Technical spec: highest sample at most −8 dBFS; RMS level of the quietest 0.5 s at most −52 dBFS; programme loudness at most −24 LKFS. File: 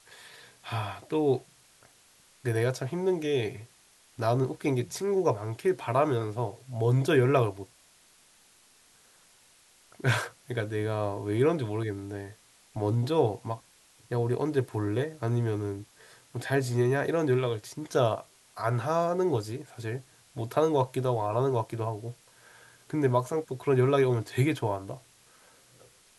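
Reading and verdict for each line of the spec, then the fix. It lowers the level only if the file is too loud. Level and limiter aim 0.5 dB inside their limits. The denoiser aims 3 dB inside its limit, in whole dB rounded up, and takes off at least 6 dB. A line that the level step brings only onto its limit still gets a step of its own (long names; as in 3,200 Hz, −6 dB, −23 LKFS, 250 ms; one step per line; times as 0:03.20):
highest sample −11.0 dBFS: in spec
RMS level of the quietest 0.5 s −61 dBFS: in spec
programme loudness −29.0 LKFS: in spec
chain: no processing needed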